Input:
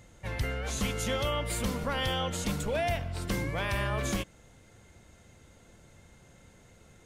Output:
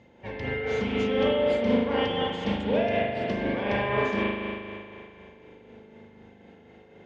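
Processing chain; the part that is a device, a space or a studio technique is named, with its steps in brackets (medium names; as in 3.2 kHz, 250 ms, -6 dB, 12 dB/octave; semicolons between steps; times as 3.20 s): combo amplifier with spring reverb and tremolo (spring tank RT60 2.5 s, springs 39 ms, chirp 65 ms, DRR -5.5 dB; tremolo 4 Hz, depth 38%; cabinet simulation 110–4300 Hz, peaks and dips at 150 Hz -7 dB, 230 Hz +9 dB, 420 Hz +9 dB, 860 Hz +4 dB, 1.3 kHz -8 dB, 4 kHz -5 dB)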